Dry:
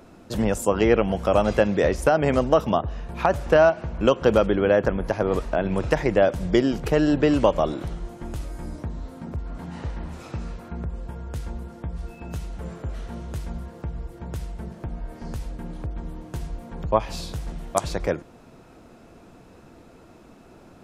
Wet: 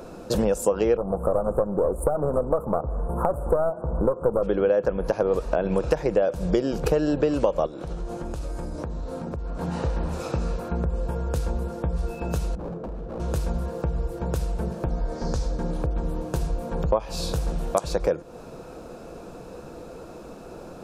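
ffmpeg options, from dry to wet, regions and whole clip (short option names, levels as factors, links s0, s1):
-filter_complex "[0:a]asettb=1/sr,asplit=3[s0][s1][s2];[s0]atrim=end=0.974[s3];[s1]atrim=start=0.97:end=4.43,asetpts=PTS-STARTPTS,afade=t=in:d=0.004:c=qsin,afade=t=out:st=3.456:d=0.004:c=qsin,aeval=exprs='clip(val(0),-1,0.0447)':c=same,asuperstop=centerf=3500:order=12:qfactor=0.5[s4];[s2]atrim=start=4.426[s5];[s3][s4]acrossfade=d=0.004:c1=hsin:c2=qsin[s6];[s6][s5]acrossfade=d=0.004:c1=qsin:c2=hsin,asettb=1/sr,asplit=3[s7][s8][s9];[s7]atrim=end=7.664[s10];[s8]atrim=start=7.66:end=9.61,asetpts=PTS-STARTPTS,afade=t=in:d=0.004:c=qsin,afade=t=out:st=1.946:d=0.004:c=qsin,lowpass=10000,acompressor=threshold=0.0178:ratio=6:attack=3.2:release=140:knee=1:detection=peak[s11];[s9]atrim=start=9.606[s12];[s10][s11]acrossfade=d=0.004:c1=hsin:c2=qsin[s13];[s13][s12]acrossfade=d=0.004:c1=qsin:c2=hsin,asettb=1/sr,asplit=3[s14][s15][s16];[s14]atrim=end=12.554[s17];[s15]atrim=start=12.55:end=13.2,asetpts=PTS-STARTPTS,afade=t=in:d=0.004:c=qsin,afade=t=out:st=0.646:d=0.004:c=qsin,bandpass=f=190:t=q:w=0.7,aeval=exprs='0.0158*(abs(mod(val(0)/0.0158+3,4)-2)-1)':c=same[s18];[s16]atrim=start=13.196[s19];[s17][s18]acrossfade=d=0.004:c1=hsin:c2=qsin[s20];[s20][s19]acrossfade=d=0.004:c1=qsin:c2=hsin,asettb=1/sr,asplit=3[s21][s22][s23];[s21]atrim=end=14.904[s24];[s22]atrim=start=14.9:end=15.71,asetpts=PTS-STARTPTS,afade=t=in:d=0.004:c=qsin,afade=t=out:st=0.806:d=0.004:c=qsin,lowpass=f=6000:t=q:w=1.8,equalizer=f=2700:w=4:g=-6.5[s25];[s23]atrim=start=15.706[s26];[s24][s25]acrossfade=d=0.004:c1=hsin:c2=qsin[s27];[s27][s26]acrossfade=d=0.004:c1=qsin:c2=hsin,equalizer=f=100:t=o:w=0.33:g=-10,equalizer=f=250:t=o:w=0.33:g=-5,equalizer=f=500:t=o:w=0.33:g=8,equalizer=f=2000:t=o:w=0.33:g=-10,equalizer=f=3150:t=o:w=0.33:g=-5,acompressor=threshold=0.0355:ratio=4,volume=2.51"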